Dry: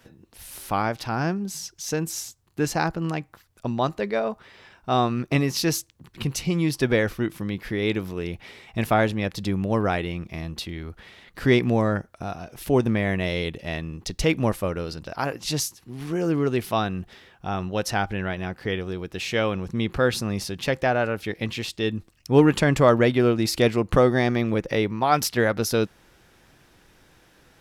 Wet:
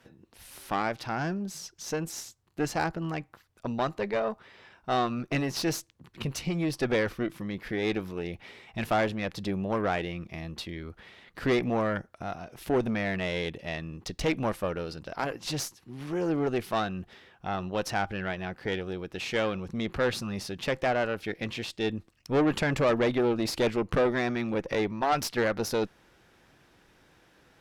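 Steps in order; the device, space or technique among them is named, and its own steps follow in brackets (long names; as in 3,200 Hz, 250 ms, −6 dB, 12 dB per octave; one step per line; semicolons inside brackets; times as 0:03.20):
tube preamp driven hard (tube saturation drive 19 dB, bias 0.6; low-shelf EQ 97 Hz −6 dB; high-shelf EQ 5,900 Hz −7.5 dB)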